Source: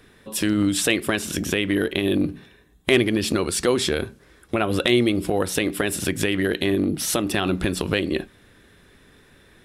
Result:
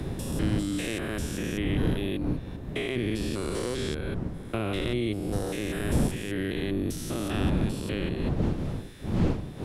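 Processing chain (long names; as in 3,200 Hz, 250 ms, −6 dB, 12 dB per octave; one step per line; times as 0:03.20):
spectrum averaged block by block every 200 ms
wind on the microphone 210 Hz −22 dBFS
multiband upward and downward compressor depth 70%
level −8 dB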